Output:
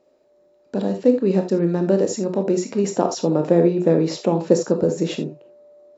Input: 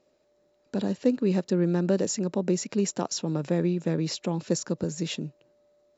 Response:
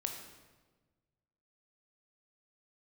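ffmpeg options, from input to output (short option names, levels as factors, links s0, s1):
-filter_complex "[0:a]asetnsamples=n=441:p=0,asendcmd='2.84 equalizer g 14.5',equalizer=f=520:w=0.48:g=8.5[s0];[1:a]atrim=start_sample=2205,atrim=end_sample=3969[s1];[s0][s1]afir=irnorm=-1:irlink=0"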